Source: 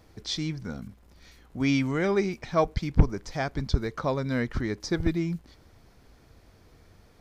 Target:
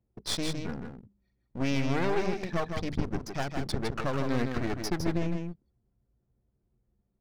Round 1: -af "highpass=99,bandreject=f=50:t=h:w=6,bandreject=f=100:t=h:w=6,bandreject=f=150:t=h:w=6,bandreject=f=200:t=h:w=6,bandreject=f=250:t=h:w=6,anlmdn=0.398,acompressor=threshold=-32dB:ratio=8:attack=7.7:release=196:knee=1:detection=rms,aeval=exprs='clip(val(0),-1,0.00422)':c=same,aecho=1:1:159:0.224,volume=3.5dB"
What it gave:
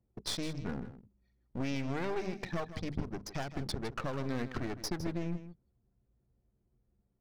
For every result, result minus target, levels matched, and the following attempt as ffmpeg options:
compressor: peak gain reduction +7 dB; echo-to-direct -7 dB
-af "highpass=99,bandreject=f=50:t=h:w=6,bandreject=f=100:t=h:w=6,bandreject=f=150:t=h:w=6,bandreject=f=200:t=h:w=6,bandreject=f=250:t=h:w=6,anlmdn=0.398,acompressor=threshold=-24dB:ratio=8:attack=7.7:release=196:knee=1:detection=rms,aeval=exprs='clip(val(0),-1,0.00422)':c=same,aecho=1:1:159:0.224,volume=3.5dB"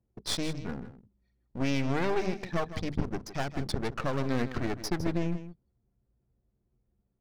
echo-to-direct -7 dB
-af "highpass=99,bandreject=f=50:t=h:w=6,bandreject=f=100:t=h:w=6,bandreject=f=150:t=h:w=6,bandreject=f=200:t=h:w=6,bandreject=f=250:t=h:w=6,anlmdn=0.398,acompressor=threshold=-24dB:ratio=8:attack=7.7:release=196:knee=1:detection=rms,aeval=exprs='clip(val(0),-1,0.00422)':c=same,aecho=1:1:159:0.501,volume=3.5dB"

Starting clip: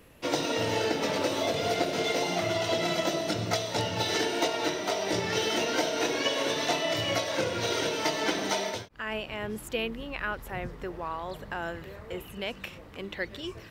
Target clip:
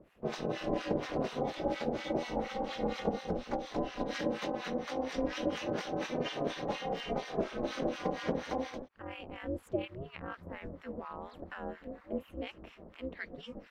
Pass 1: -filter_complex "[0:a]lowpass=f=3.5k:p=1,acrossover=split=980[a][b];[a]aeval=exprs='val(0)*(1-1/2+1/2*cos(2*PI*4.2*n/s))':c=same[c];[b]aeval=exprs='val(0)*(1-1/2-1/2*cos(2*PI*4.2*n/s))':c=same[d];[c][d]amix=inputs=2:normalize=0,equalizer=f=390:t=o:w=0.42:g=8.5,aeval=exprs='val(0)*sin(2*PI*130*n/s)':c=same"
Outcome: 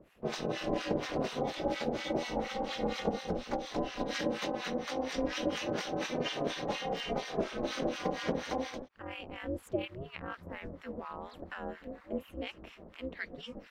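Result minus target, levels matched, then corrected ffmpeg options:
4000 Hz band +3.5 dB
-filter_complex "[0:a]lowpass=f=1.7k:p=1,acrossover=split=980[a][b];[a]aeval=exprs='val(0)*(1-1/2+1/2*cos(2*PI*4.2*n/s))':c=same[c];[b]aeval=exprs='val(0)*(1-1/2-1/2*cos(2*PI*4.2*n/s))':c=same[d];[c][d]amix=inputs=2:normalize=0,equalizer=f=390:t=o:w=0.42:g=8.5,aeval=exprs='val(0)*sin(2*PI*130*n/s)':c=same"

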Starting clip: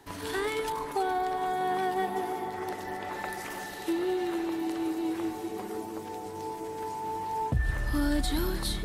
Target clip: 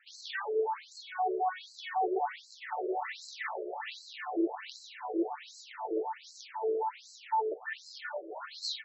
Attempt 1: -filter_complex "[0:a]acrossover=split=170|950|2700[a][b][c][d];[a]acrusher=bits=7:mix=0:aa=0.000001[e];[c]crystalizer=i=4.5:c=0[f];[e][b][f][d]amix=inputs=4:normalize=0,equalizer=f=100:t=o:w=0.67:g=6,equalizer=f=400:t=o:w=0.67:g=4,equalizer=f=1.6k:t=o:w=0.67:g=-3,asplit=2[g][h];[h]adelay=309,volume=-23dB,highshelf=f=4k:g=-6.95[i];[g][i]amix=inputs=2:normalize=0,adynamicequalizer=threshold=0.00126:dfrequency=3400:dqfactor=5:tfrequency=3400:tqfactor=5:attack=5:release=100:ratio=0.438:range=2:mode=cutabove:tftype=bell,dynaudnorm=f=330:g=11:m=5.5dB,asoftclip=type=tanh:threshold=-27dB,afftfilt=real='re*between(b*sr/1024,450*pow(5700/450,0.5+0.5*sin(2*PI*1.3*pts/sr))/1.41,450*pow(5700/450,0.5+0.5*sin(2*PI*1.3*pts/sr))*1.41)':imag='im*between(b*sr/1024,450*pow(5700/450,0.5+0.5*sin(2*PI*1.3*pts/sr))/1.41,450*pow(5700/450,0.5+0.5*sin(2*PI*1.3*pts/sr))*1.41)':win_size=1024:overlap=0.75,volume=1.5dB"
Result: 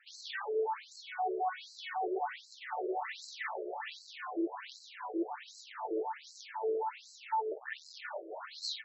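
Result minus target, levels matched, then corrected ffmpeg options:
soft clip: distortion +8 dB
-filter_complex "[0:a]acrossover=split=170|950|2700[a][b][c][d];[a]acrusher=bits=7:mix=0:aa=0.000001[e];[c]crystalizer=i=4.5:c=0[f];[e][b][f][d]amix=inputs=4:normalize=0,equalizer=f=100:t=o:w=0.67:g=6,equalizer=f=400:t=o:w=0.67:g=4,equalizer=f=1.6k:t=o:w=0.67:g=-3,asplit=2[g][h];[h]adelay=309,volume=-23dB,highshelf=f=4k:g=-6.95[i];[g][i]amix=inputs=2:normalize=0,adynamicequalizer=threshold=0.00126:dfrequency=3400:dqfactor=5:tfrequency=3400:tqfactor=5:attack=5:release=100:ratio=0.438:range=2:mode=cutabove:tftype=bell,dynaudnorm=f=330:g=11:m=5.5dB,asoftclip=type=tanh:threshold=-19dB,afftfilt=real='re*between(b*sr/1024,450*pow(5700/450,0.5+0.5*sin(2*PI*1.3*pts/sr))/1.41,450*pow(5700/450,0.5+0.5*sin(2*PI*1.3*pts/sr))*1.41)':imag='im*between(b*sr/1024,450*pow(5700/450,0.5+0.5*sin(2*PI*1.3*pts/sr))/1.41,450*pow(5700/450,0.5+0.5*sin(2*PI*1.3*pts/sr))*1.41)':win_size=1024:overlap=0.75,volume=1.5dB"

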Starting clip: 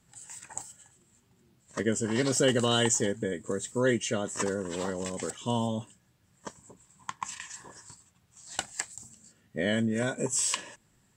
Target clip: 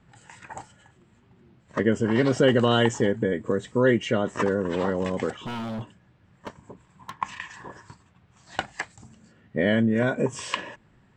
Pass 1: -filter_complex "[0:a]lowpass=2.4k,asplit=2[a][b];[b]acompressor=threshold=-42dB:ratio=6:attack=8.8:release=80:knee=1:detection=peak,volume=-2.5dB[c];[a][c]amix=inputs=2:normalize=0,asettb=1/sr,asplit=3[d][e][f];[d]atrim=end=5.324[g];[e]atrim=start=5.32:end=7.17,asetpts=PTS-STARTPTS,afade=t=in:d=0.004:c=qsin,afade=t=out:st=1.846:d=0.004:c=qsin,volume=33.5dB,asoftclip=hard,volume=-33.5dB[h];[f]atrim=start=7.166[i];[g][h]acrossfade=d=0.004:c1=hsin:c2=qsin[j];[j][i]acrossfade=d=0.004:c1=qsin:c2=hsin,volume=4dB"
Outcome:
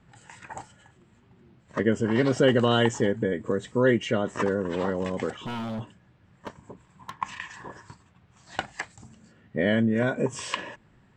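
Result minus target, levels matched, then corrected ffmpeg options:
compressor: peak gain reduction +7.5 dB
-filter_complex "[0:a]lowpass=2.4k,asplit=2[a][b];[b]acompressor=threshold=-33dB:ratio=6:attack=8.8:release=80:knee=1:detection=peak,volume=-2.5dB[c];[a][c]amix=inputs=2:normalize=0,asettb=1/sr,asplit=3[d][e][f];[d]atrim=end=5.324[g];[e]atrim=start=5.32:end=7.17,asetpts=PTS-STARTPTS,afade=t=in:d=0.004:c=qsin,afade=t=out:st=1.846:d=0.004:c=qsin,volume=33.5dB,asoftclip=hard,volume=-33.5dB[h];[f]atrim=start=7.166[i];[g][h]acrossfade=d=0.004:c1=hsin:c2=qsin[j];[j][i]acrossfade=d=0.004:c1=qsin:c2=hsin,volume=4dB"

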